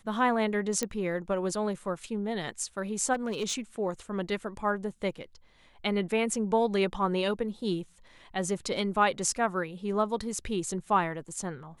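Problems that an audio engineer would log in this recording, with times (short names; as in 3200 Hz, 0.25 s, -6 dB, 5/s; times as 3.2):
0.83 pop -14 dBFS
3.13–3.54 clipped -25 dBFS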